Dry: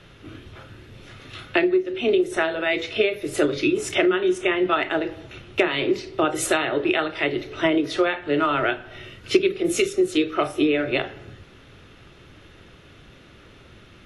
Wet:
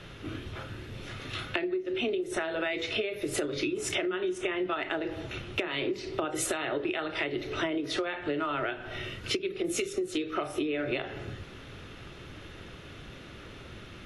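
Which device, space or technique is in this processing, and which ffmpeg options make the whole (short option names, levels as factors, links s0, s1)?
serial compression, peaks first: -af "acompressor=threshold=0.0501:ratio=6,acompressor=threshold=0.0224:ratio=2,volume=1.33"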